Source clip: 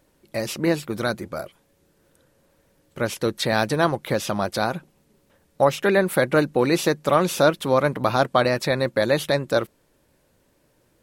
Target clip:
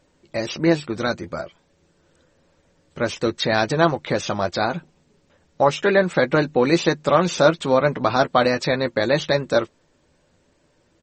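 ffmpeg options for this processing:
ffmpeg -i in.wav -filter_complex "[0:a]asplit=2[link_01][link_02];[link_02]adelay=12,volume=-8dB[link_03];[link_01][link_03]amix=inputs=2:normalize=0,volume=1.5dB" -ar 44100 -c:a libmp3lame -b:a 32k out.mp3

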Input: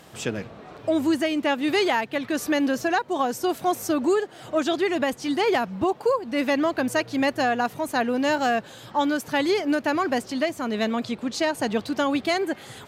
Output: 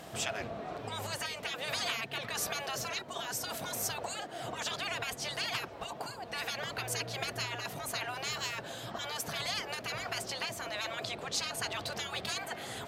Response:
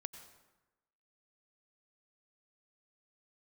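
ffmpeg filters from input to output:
-af "afftfilt=real='re*lt(hypot(re,im),0.1)':imag='im*lt(hypot(re,im),0.1)':win_size=1024:overlap=0.75,equalizer=frequency=680:width=7.3:gain=9.5"

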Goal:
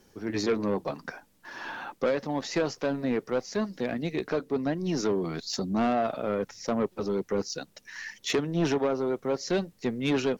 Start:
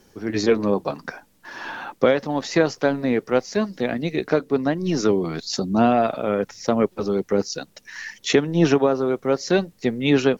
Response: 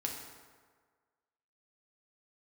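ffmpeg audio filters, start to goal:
-af "asoftclip=type=tanh:threshold=-14.5dB,volume=-5dB"

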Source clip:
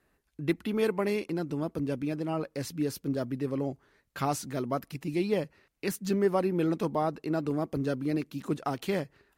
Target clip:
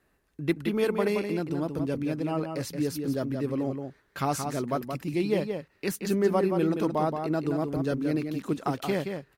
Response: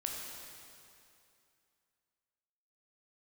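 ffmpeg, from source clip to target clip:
-filter_complex "[0:a]asplit=2[link_01][link_02];[link_02]adelay=174.9,volume=-6dB,highshelf=frequency=4000:gain=-3.94[link_03];[link_01][link_03]amix=inputs=2:normalize=0,volume=1.5dB"

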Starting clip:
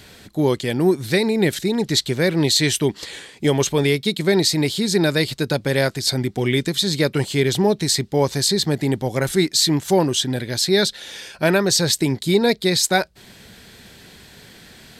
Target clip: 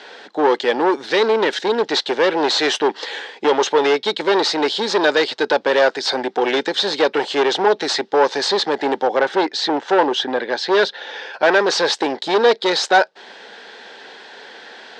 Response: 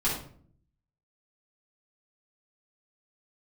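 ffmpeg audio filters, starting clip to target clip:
-filter_complex "[0:a]asettb=1/sr,asplit=3[link_01][link_02][link_03];[link_01]atrim=end=9.074[link_04];[link_02]atrim=start=9.07:end=11.34,asetpts=PTS-STARTPTS,afade=type=in:duration=0.004:curve=qsin,afade=type=out:start_time=2.266:duration=0.004:curve=qsin,aemphasis=mode=reproduction:type=75fm[link_05];[link_03]atrim=start=11.336[link_06];[link_04][link_05]acrossfade=duration=0.004:curve1=hsin:curve2=qsin[link_07];[link_07][link_06]acrossfade=duration=0.004:curve1=qsin:curve2=hsin,volume=18dB,asoftclip=hard,volume=-18dB,highpass=frequency=330:width=0.5412,highpass=frequency=330:width=1.3066,equalizer=frequency=340:width_type=q:width=4:gain=-4,equalizer=frequency=480:width_type=q:width=4:gain=4,equalizer=frequency=850:width_type=q:width=4:gain=9,equalizer=frequency=1600:width_type=q:width=4:gain=5,equalizer=frequency=2300:width_type=q:width=4:gain=-4,equalizer=frequency=4400:width_type=q:width=4:gain=-4,lowpass=frequency=5000:width=0.5412,lowpass=frequency=5000:width=1.3066,volume=7dB"

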